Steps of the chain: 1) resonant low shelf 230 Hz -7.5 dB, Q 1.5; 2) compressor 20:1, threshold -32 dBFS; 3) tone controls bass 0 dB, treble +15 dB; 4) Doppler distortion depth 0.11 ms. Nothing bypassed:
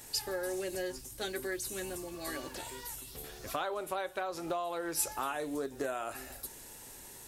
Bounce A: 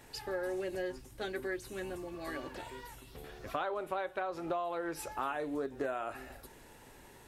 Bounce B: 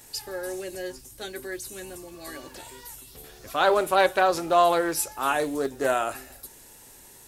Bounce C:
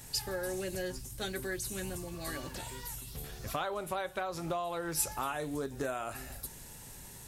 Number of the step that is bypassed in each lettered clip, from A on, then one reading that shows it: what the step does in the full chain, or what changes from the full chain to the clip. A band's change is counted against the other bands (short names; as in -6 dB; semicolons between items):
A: 3, 8 kHz band -14.0 dB; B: 2, mean gain reduction 4.5 dB; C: 1, 125 Hz band +8.5 dB